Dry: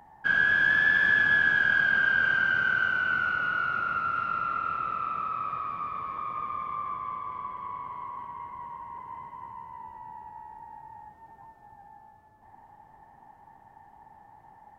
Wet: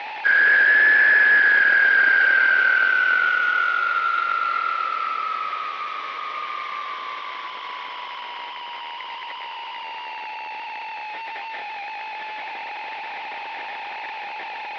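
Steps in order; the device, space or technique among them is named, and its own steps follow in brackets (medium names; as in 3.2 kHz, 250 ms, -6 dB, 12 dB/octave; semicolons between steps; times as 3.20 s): digital answering machine (band-pass 400–3100 Hz; one-bit delta coder 32 kbps, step -33 dBFS; cabinet simulation 440–3400 Hz, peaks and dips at 700 Hz -4 dB, 1.1 kHz -8 dB, 2.1 kHz +8 dB); trim +9 dB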